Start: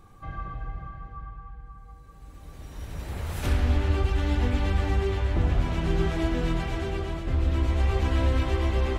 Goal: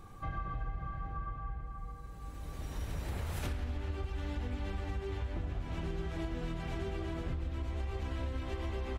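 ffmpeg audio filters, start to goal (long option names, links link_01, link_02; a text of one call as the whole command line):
ffmpeg -i in.wav -filter_complex "[0:a]asplit=2[link_01][link_02];[link_02]adelay=816.3,volume=-10dB,highshelf=frequency=4000:gain=-18.4[link_03];[link_01][link_03]amix=inputs=2:normalize=0,acompressor=threshold=-34dB:ratio=16,volume=1dB" out.wav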